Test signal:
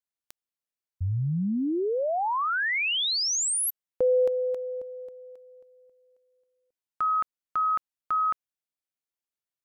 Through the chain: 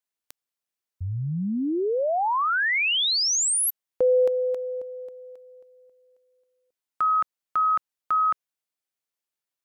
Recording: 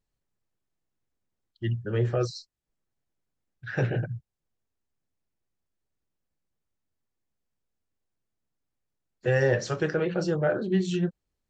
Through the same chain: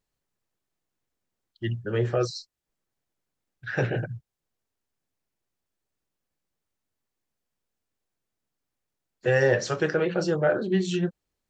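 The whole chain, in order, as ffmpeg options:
-af "lowshelf=f=200:g=-7,volume=1.5"

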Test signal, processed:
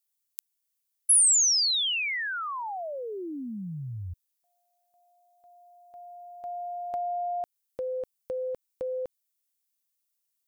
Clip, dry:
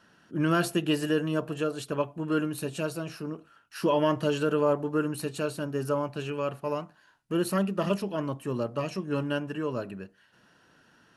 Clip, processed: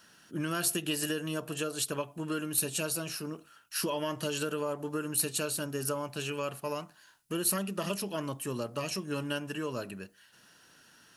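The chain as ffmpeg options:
-af "acompressor=threshold=0.0447:ratio=6,crystalizer=i=5:c=0,volume=0.668"

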